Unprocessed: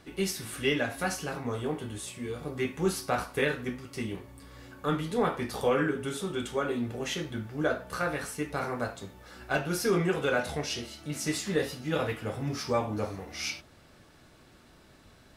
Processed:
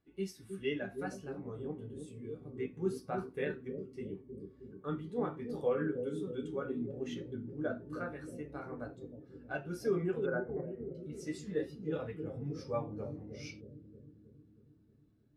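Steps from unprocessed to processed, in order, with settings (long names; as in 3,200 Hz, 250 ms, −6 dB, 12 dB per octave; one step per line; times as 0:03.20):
0:10.26–0:10.95: Butterworth low-pass 1,900 Hz 36 dB per octave
bucket-brigade delay 315 ms, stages 1,024, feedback 74%, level −4 dB
every bin expanded away from the loudest bin 1.5 to 1
level −7.5 dB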